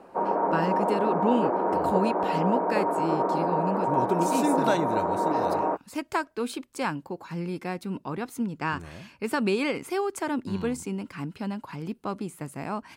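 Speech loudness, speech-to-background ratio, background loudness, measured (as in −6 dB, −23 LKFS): −30.5 LKFS, −4.0 dB, −26.5 LKFS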